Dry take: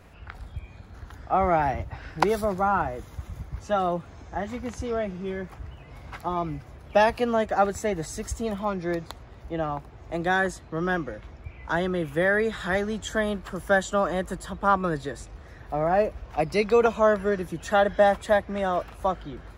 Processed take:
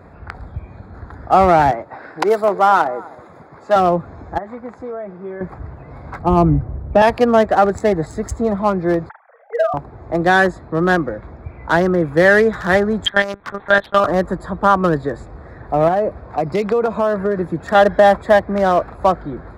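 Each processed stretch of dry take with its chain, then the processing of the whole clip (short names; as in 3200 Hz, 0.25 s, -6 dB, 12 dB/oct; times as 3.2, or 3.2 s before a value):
1.71–3.76 HPF 340 Hz + echo 0.254 s -20 dB
4.38–5.41 HPF 700 Hz 6 dB/oct + bell 6600 Hz -10.5 dB 2.8 oct + compressor 10:1, threshold -35 dBFS
6.19–7.02 tilt -3.5 dB/oct + three-band expander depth 40%
9.09–9.74 sine-wave speech + rippled Chebyshev high-pass 450 Hz, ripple 6 dB + doubler 46 ms -7.5 dB
13.06–14.08 tilt +4 dB/oct + transient shaper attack +5 dB, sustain -8 dB + monotone LPC vocoder at 8 kHz 200 Hz
15.88–17.75 HPF 68 Hz + compressor, threshold -24 dBFS
whole clip: Wiener smoothing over 15 samples; HPF 100 Hz 6 dB/oct; maximiser +13 dB; gain -1 dB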